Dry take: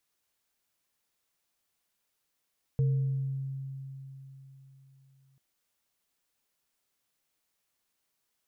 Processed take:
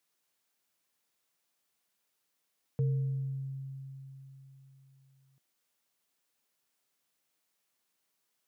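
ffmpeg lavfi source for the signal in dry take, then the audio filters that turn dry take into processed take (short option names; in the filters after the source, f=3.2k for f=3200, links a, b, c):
-f lavfi -i "aevalsrc='0.0794*pow(10,-3*t/3.77)*sin(2*PI*135*t)+0.015*pow(10,-3*t/1.02)*sin(2*PI*456*t)':d=2.59:s=44100"
-af "highpass=130"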